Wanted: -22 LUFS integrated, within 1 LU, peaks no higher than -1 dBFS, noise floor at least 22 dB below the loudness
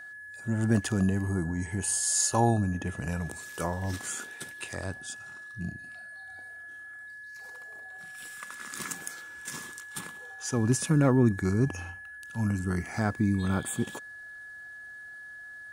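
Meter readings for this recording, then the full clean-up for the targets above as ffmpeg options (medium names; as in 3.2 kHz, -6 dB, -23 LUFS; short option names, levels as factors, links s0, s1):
steady tone 1.7 kHz; tone level -42 dBFS; loudness -29.5 LUFS; peak level -10.0 dBFS; loudness target -22.0 LUFS
-> -af "bandreject=f=1700:w=30"
-af "volume=2.37"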